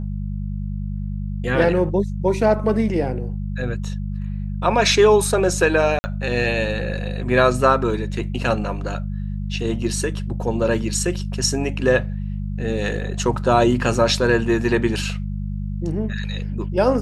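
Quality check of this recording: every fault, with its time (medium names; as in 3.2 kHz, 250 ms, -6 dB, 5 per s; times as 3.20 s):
hum 50 Hz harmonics 4 -26 dBFS
5.99–6.04 s: dropout 50 ms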